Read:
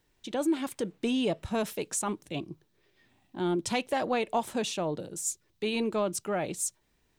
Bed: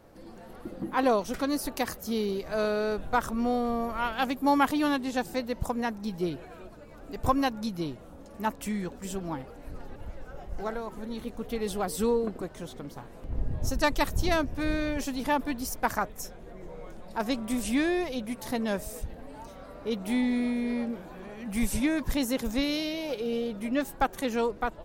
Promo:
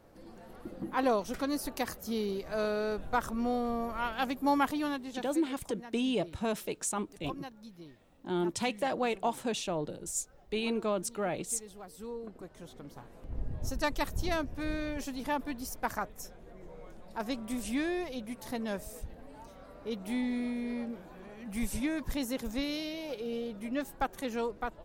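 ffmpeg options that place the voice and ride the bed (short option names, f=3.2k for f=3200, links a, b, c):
-filter_complex "[0:a]adelay=4900,volume=-2.5dB[a];[1:a]volume=7.5dB,afade=t=out:st=4.53:d=0.89:silence=0.211349,afade=t=in:st=12.02:d=1:silence=0.266073[b];[a][b]amix=inputs=2:normalize=0"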